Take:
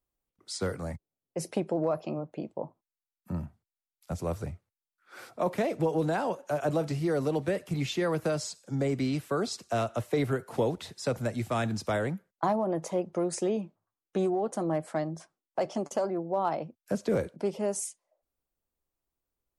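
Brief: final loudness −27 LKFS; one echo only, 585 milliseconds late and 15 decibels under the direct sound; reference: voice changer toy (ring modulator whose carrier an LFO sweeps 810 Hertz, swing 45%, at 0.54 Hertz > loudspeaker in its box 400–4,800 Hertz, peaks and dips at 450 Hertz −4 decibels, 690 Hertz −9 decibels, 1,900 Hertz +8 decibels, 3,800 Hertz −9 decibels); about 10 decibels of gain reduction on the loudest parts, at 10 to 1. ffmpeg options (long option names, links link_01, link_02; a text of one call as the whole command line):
ffmpeg -i in.wav -af "acompressor=threshold=-33dB:ratio=10,aecho=1:1:585:0.178,aeval=exprs='val(0)*sin(2*PI*810*n/s+810*0.45/0.54*sin(2*PI*0.54*n/s))':channel_layout=same,highpass=400,equalizer=frequency=450:width_type=q:width=4:gain=-4,equalizer=frequency=690:width_type=q:width=4:gain=-9,equalizer=frequency=1900:width_type=q:width=4:gain=8,equalizer=frequency=3800:width_type=q:width=4:gain=-9,lowpass=frequency=4800:width=0.5412,lowpass=frequency=4800:width=1.3066,volume=14.5dB" out.wav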